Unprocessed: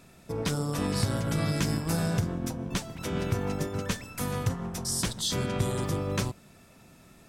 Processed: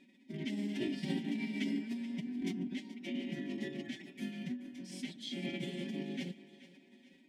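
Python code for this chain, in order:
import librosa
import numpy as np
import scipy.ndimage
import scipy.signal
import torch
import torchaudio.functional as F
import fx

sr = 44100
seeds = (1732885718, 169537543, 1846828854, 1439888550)

p1 = x + 0.74 * np.pad(x, (int(7.4 * sr / 1000.0), 0))[:len(x)]
p2 = fx.cheby_harmonics(p1, sr, harmonics=(2, 3, 4), levels_db=(-25, -17, -27), full_scale_db=-12.0)
p3 = (np.mod(10.0 ** (26.5 / 20.0) * p2 + 1.0, 2.0) - 1.0) / 10.0 ** (26.5 / 20.0)
p4 = p2 + (p3 * librosa.db_to_amplitude(-11.0))
p5 = fx.vowel_filter(p4, sr, vowel='i')
p6 = fx.pitch_keep_formants(p5, sr, semitones=6.0)
p7 = fx.echo_thinned(p6, sr, ms=429, feedback_pct=47, hz=240.0, wet_db=-15.5)
y = p7 * librosa.db_to_amplitude(3.5)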